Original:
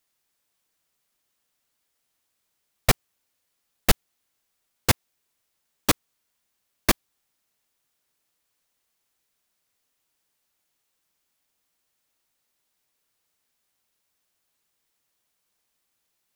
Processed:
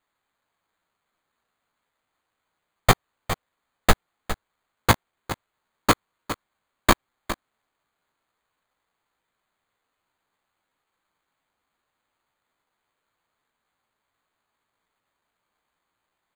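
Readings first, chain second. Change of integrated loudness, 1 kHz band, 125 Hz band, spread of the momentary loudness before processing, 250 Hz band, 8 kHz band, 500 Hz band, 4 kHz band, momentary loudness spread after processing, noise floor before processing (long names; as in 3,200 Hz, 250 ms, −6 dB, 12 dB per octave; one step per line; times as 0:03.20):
0.0 dB, +8.0 dB, +3.0 dB, 4 LU, +3.0 dB, −2.5 dB, +4.0 dB, +0.5 dB, 14 LU, −77 dBFS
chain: parametric band 1,100 Hz +6.5 dB 1.3 octaves
double-tracking delay 18 ms −11 dB
single-tap delay 409 ms −12 dB
bad sample-rate conversion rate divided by 8×, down filtered, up hold
regular buffer underruns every 0.18 s, samples 512, repeat, from 0:00.43
level +2 dB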